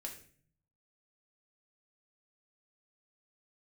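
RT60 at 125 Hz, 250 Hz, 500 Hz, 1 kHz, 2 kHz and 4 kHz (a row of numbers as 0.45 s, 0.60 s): 1.0 s, 0.80 s, 0.55 s, 0.40 s, 0.50 s, 0.40 s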